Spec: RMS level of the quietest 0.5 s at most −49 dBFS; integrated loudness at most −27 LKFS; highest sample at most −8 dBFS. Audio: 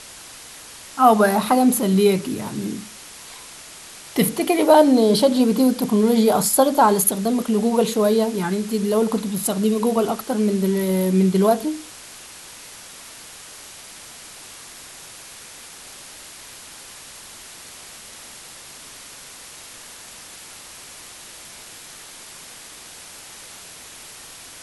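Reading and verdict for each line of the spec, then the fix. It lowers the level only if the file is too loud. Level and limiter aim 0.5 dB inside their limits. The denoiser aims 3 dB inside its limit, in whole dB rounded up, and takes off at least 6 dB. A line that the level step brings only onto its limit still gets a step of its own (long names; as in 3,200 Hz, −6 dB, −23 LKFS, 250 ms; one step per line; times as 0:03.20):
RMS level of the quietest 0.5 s −41 dBFS: out of spec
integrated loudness −18.5 LKFS: out of spec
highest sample −3.0 dBFS: out of spec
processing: level −9 dB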